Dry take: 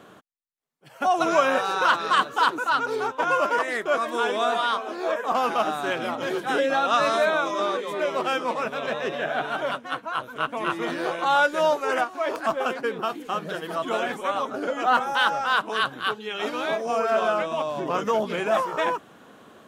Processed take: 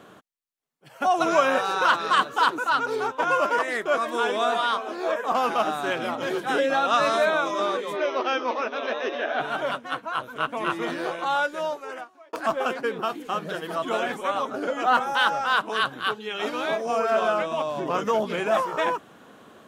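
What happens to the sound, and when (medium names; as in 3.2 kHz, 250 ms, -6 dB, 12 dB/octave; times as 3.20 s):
7.96–9.40 s: brick-wall FIR band-pass 220–6500 Hz
10.77–12.33 s: fade out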